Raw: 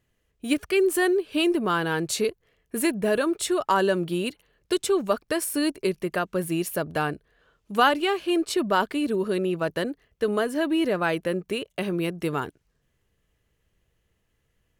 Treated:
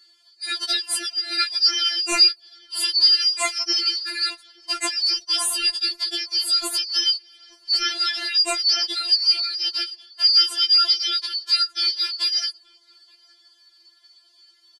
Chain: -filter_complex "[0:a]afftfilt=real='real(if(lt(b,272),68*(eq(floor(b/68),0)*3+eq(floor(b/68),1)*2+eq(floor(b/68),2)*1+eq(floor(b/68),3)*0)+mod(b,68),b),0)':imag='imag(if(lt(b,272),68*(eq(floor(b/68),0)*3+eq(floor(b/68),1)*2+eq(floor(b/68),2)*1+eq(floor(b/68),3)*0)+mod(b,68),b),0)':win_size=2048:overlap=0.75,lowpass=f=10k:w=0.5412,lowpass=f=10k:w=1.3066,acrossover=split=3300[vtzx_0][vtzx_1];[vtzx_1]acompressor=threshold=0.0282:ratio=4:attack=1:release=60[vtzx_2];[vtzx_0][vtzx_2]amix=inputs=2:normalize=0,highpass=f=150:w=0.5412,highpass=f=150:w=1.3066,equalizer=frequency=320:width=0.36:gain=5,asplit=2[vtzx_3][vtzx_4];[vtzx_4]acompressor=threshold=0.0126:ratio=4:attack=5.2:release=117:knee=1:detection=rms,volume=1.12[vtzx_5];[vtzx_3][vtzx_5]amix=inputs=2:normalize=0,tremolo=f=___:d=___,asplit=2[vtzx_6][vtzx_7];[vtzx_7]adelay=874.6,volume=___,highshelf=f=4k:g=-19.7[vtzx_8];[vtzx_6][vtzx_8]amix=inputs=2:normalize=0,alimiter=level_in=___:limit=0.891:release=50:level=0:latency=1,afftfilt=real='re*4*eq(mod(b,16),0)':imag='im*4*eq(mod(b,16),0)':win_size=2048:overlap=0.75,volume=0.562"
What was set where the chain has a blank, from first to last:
110, 0.947, 0.0562, 10